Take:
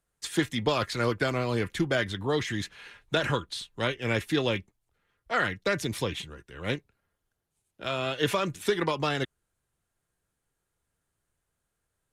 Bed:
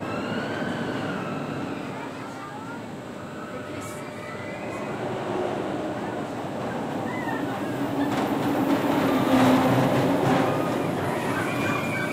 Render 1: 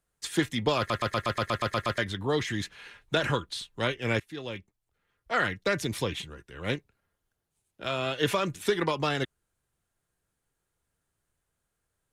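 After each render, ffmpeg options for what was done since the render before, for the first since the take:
-filter_complex "[0:a]asplit=12[a][b][c][d][e][f][g][h][i][j][k][l];[a]atrim=end=0.902[m];[b]atrim=start=0.778:end=0.902[n];[c]atrim=start=0.778:end=0.902[o];[d]atrim=start=0.778:end=0.902[p];[e]atrim=start=0.778:end=0.902[q];[f]atrim=start=0.778:end=0.902[r];[g]atrim=start=0.778:end=0.902[s];[h]atrim=start=0.778:end=0.902[t];[i]atrim=start=0.778:end=0.902[u];[j]atrim=start=0.778:end=0.902[v];[k]atrim=start=1.978:end=4.2,asetpts=PTS-STARTPTS,afade=t=out:st=2.218:d=0.004:c=hsin:silence=0.1[w];[l]atrim=start=4.2,asetpts=PTS-STARTPTS,afade=t=in:d=1.14:silence=0.1[x];[m][n]acrossfade=d=0.004:c1=hsin:c2=hsin[y];[y][o]acrossfade=d=0.004:c1=hsin:c2=hsin[z];[z][p]acrossfade=d=0.004:c1=hsin:c2=hsin[aa];[aa][q]acrossfade=d=0.004:c1=hsin:c2=hsin[ab];[ab][r]acrossfade=d=0.004:c1=hsin:c2=hsin[ac];[ac][s]acrossfade=d=0.004:c1=hsin:c2=hsin[ad];[ad][t]acrossfade=d=0.004:c1=hsin:c2=hsin[ae];[ae][u]acrossfade=d=0.004:c1=hsin:c2=hsin[af];[af][v]acrossfade=d=0.004:c1=hsin:c2=hsin[ag];[w][x]concat=n=2:v=0:a=1[ah];[ag][ah]acrossfade=d=0.004:c1=hsin:c2=hsin"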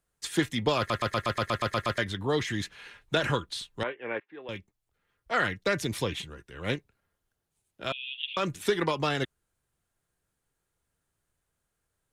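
-filter_complex "[0:a]asettb=1/sr,asplit=3[a][b][c];[a]atrim=end=3.834[d];[b]atrim=start=3.83:end=4.49,asetpts=PTS-STARTPTS,afade=t=in:d=0.004:c=qsin,afade=t=out:st=0.656:d=0.004:c=qsin,highpass=450,equalizer=f=670:t=q:w=4:g=-4,equalizer=f=1.3k:t=q:w=4:g=-6,equalizer=f=2k:t=q:w=4:g=-4,lowpass=f=2.1k:w=0.5412,lowpass=f=2.1k:w=1.3066[e];[c]atrim=start=4.486[f];[d][e]acrossfade=d=0.004:c1=hsin:c2=qsin[g];[g][f]acrossfade=d=0.004:c1=qsin:c2=hsin,asettb=1/sr,asplit=3[h][i][j];[h]atrim=end=7.924[k];[i]atrim=start=7.92:end=8.37,asetpts=PTS-STARTPTS,afade=t=in:d=0.004:c=qsin,afade=t=out:st=0.446:d=0.004:c=qsin,asuperpass=centerf=3000:order=8:qfactor=2.6[l];[j]atrim=start=8.366[m];[k][l]acrossfade=d=0.004:c1=hsin:c2=qsin[n];[n][m]acrossfade=d=0.004:c1=qsin:c2=hsin"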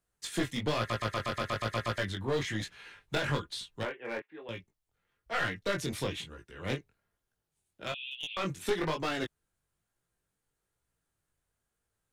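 -af "aeval=exprs='clip(val(0),-1,0.0422)':c=same,flanger=delay=17:depth=5.4:speed=1.1"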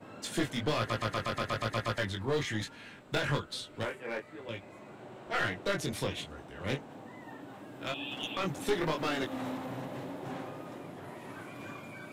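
-filter_complex "[1:a]volume=-19dB[a];[0:a][a]amix=inputs=2:normalize=0"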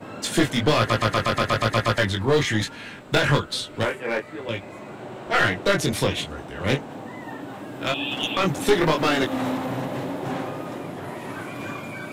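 -af "volume=11.5dB"

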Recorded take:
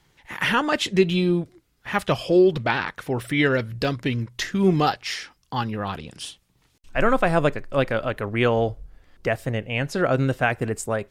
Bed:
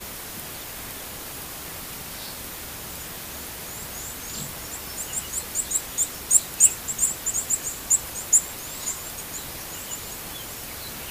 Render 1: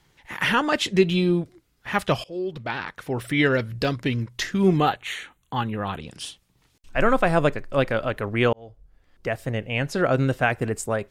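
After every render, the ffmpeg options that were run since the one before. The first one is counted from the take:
-filter_complex "[0:a]asettb=1/sr,asplit=3[a][b][c];[a]atrim=end=4.774[d];[b]atrim=start=4.77:end=6.02,asetpts=PTS-STARTPTS,afade=t=in:d=0.004:c=qsin,afade=t=out:st=1.246:d=0.004:c=qsin,asuperstop=centerf=5100:order=4:qfactor=1.9[e];[c]atrim=start=6.016[f];[d][e]acrossfade=d=0.004:c1=hsin:c2=qsin[g];[g][f]acrossfade=d=0.004:c1=qsin:c2=hsin,asplit=3[h][i][j];[h]atrim=end=2.24,asetpts=PTS-STARTPTS,afade=t=out:st=2.236:d=0.004:c=hsin:silence=0.0794328[k];[i]atrim=start=2.24:end=8.53,asetpts=PTS-STARTPTS,afade=t=in:d=1.11:silence=0.0794328,afade=t=out:st=6.286:d=0.004:c=hsin[l];[j]atrim=start=8.53,asetpts=PTS-STARTPTS,afade=t=in:d=1.13[m];[k][l][m]concat=n=3:v=0:a=1"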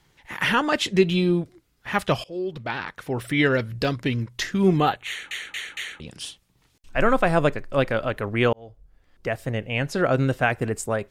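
-filter_complex "[0:a]asplit=5[a][b][c][d][e];[a]atrim=end=5.312[f];[b]atrim=start=5.078:end=5.312[g];[c]atrim=start=5.078:end=5.312[h];[d]atrim=start=5.078:end=5.312[i];[e]atrim=start=5.998[j];[f][g]acrossfade=d=0.004:c1=hsin:c2=hsin[k];[k][h]acrossfade=d=0.004:c1=hsin:c2=hsin[l];[l][i]acrossfade=d=0.004:c1=hsin:c2=hsin[m];[m][j]acrossfade=d=0.004:c1=hsin:c2=hsin"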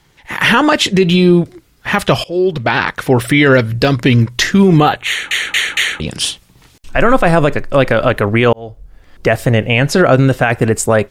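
-af "dynaudnorm=f=230:g=3:m=9.5dB,alimiter=level_in=8.5dB:limit=-1dB:release=50:level=0:latency=1"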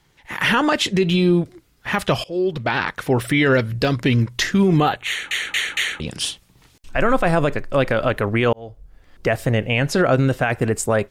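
-af "volume=-7dB"

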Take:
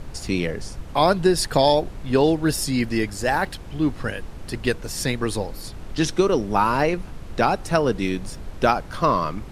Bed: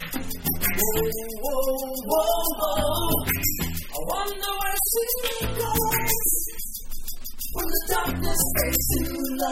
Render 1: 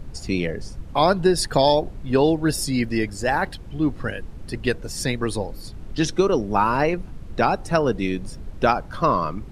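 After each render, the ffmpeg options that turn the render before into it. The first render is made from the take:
-af "afftdn=nr=8:nf=-37"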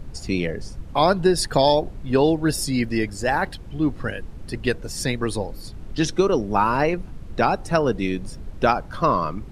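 -af anull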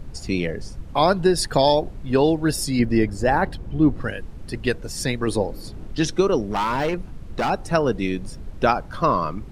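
-filter_complex "[0:a]asettb=1/sr,asplit=3[a][b][c];[a]atrim=end=2.794[d];[b]atrim=start=2.79:end=4.01,asetpts=PTS-STARTPTS,afade=t=in:d=0.004:c=qsin,afade=t=out:st=1.216:d=0.004:c=qsin,tiltshelf=f=1.4k:g=5[e];[c]atrim=start=4.006[f];[d][e]acrossfade=d=0.004:c1=hsin:c2=qsin[g];[g][f]acrossfade=d=0.004:c1=qsin:c2=hsin,asettb=1/sr,asplit=3[h][i][j];[h]atrim=end=5.274[k];[i]atrim=start=5.27:end=5.87,asetpts=PTS-STARTPTS,afade=t=in:d=0.004:c=qsin,afade=t=out:st=0.596:d=0.004:c=qsin,equalizer=f=390:t=o:w=2.4:g=6[l];[j]atrim=start=5.866[m];[k][l]acrossfade=d=0.004:c1=hsin:c2=qsin[n];[n][m]acrossfade=d=0.004:c1=qsin:c2=hsin,asettb=1/sr,asplit=3[o][p][q];[o]atrim=end=6.444[r];[p]atrim=start=6.44:end=7.5,asetpts=PTS-STARTPTS,afade=t=in:d=0.004:c=qsin,afade=t=out:st=1.056:d=0.004:c=qsin,volume=18.5dB,asoftclip=hard,volume=-18.5dB[s];[q]atrim=start=7.496[t];[r][s]acrossfade=d=0.004:c1=hsin:c2=qsin[u];[u][t]acrossfade=d=0.004:c1=qsin:c2=hsin"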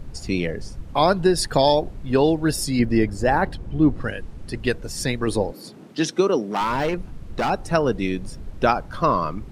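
-filter_complex "[0:a]asettb=1/sr,asplit=3[a][b][c];[a]atrim=end=3.534[d];[b]atrim=start=3.53:end=4.6,asetpts=PTS-STARTPTS,afade=t=in:d=0.004:c=qsin,afade=t=out:st=1.066:d=0.004:c=qsin,lowpass=f=12k:w=0.5412,lowpass=f=12k:w=1.3066[e];[c]atrim=start=4.596[f];[d][e]acrossfade=d=0.004:c1=hsin:c2=qsin[g];[g][f]acrossfade=d=0.004:c1=qsin:c2=hsin,asettb=1/sr,asplit=3[h][i][j];[h]atrim=end=5.524[k];[i]atrim=start=5.52:end=6.61,asetpts=PTS-STARTPTS,afade=t=in:d=0.004:c=qsin,afade=t=out:st=1.086:d=0.004:c=qsin,highpass=f=170:w=0.5412,highpass=f=170:w=1.3066[l];[j]atrim=start=6.606[m];[k][l]acrossfade=d=0.004:c1=hsin:c2=qsin[n];[n][m]acrossfade=d=0.004:c1=qsin:c2=hsin"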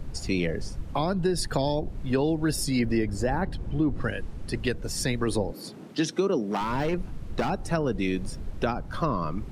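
-filter_complex "[0:a]acrossover=split=320[a][b];[a]alimiter=limit=-21.5dB:level=0:latency=1[c];[b]acompressor=threshold=-27dB:ratio=6[d];[c][d]amix=inputs=2:normalize=0"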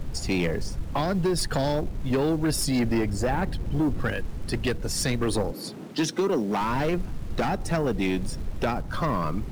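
-filter_complex "[0:a]asplit=2[a][b];[b]acrusher=bits=4:mode=log:mix=0:aa=0.000001,volume=-4dB[c];[a][c]amix=inputs=2:normalize=0,asoftclip=type=tanh:threshold=-18.5dB"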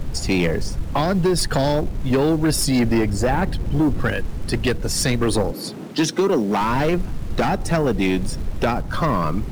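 -af "volume=6dB"

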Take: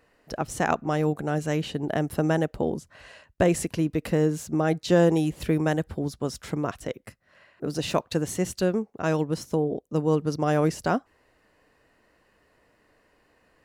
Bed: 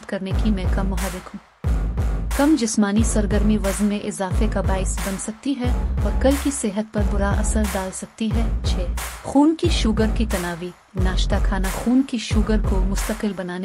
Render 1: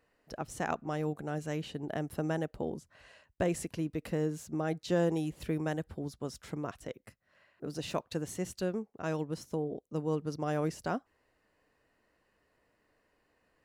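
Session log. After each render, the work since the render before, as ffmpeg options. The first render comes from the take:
-af "volume=-9.5dB"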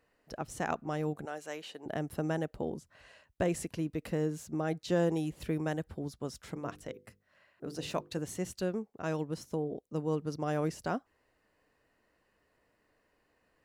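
-filter_complex "[0:a]asettb=1/sr,asplit=3[a][b][c];[a]atrim=end=1.254[d];[b]atrim=start=1.25:end=1.86,asetpts=PTS-STARTPTS,afade=t=in:d=0.004:c=qsin,afade=t=out:st=0.606:d=0.004:c=qsin,highpass=510[e];[c]atrim=start=1.856[f];[d][e]acrossfade=d=0.004:c1=hsin:c2=qsin[g];[g][f]acrossfade=d=0.004:c1=qsin:c2=hsin,asettb=1/sr,asplit=3[h][i][j];[h]atrim=end=6.534[k];[i]atrim=start=6.53:end=8.19,asetpts=PTS-STARTPTS,afade=t=in:d=0.004:c=qsin,afade=t=out:st=1.656:d=0.004:c=qsin,bandreject=f=50:t=h:w=6,bandreject=f=100:t=h:w=6,bandreject=f=150:t=h:w=6,bandreject=f=200:t=h:w=6,bandreject=f=250:t=h:w=6,bandreject=f=300:t=h:w=6,bandreject=f=350:t=h:w=6,bandreject=f=400:t=h:w=6,bandreject=f=450:t=h:w=6,bandreject=f=500:t=h:w=6[l];[j]atrim=start=8.186[m];[k][l]acrossfade=d=0.004:c1=hsin:c2=qsin[n];[n][m]acrossfade=d=0.004:c1=qsin:c2=hsin"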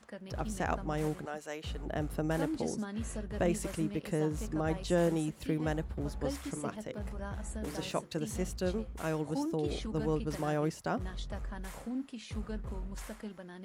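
-filter_complex "[1:a]volume=-20dB[a];[0:a][a]amix=inputs=2:normalize=0"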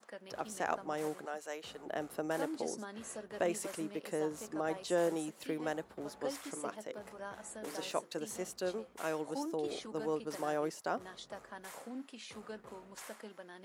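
-af "highpass=380,adynamicequalizer=threshold=0.00158:dfrequency=2600:dqfactor=1.1:tfrequency=2600:tqfactor=1.1:attack=5:release=100:ratio=0.375:range=2:mode=cutabove:tftype=bell"

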